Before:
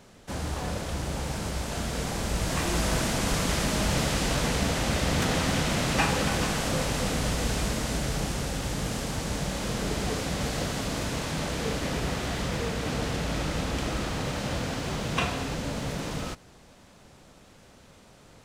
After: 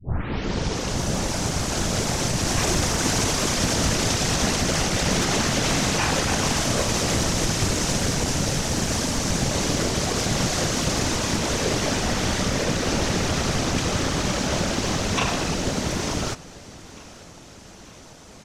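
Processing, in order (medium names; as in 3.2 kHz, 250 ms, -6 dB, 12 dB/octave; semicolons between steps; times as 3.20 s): tape start-up on the opening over 1.04 s; peaking EQ 6 kHz +8 dB 0.62 oct; peak limiter -19 dBFS, peak gain reduction 7.5 dB; whisper effect; on a send: feedback delay 896 ms, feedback 55%, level -21 dB; on the sum: resampled via 32 kHz; loudspeaker Doppler distortion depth 0.19 ms; trim +6.5 dB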